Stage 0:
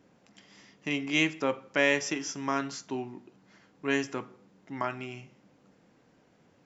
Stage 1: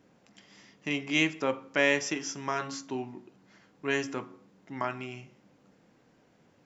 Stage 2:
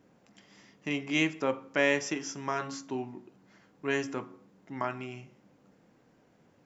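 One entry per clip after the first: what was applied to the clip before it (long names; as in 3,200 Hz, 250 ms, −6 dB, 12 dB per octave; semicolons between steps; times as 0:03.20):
hum removal 91.53 Hz, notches 15
parametric band 3,900 Hz −3.5 dB 2.2 octaves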